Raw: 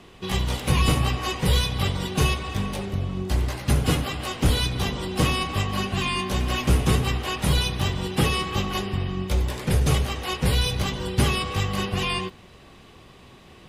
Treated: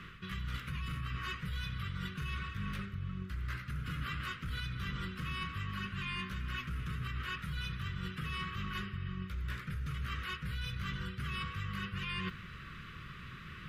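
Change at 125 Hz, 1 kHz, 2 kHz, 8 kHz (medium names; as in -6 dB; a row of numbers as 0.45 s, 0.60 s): -15.0 dB, -15.0 dB, -10.0 dB, -26.0 dB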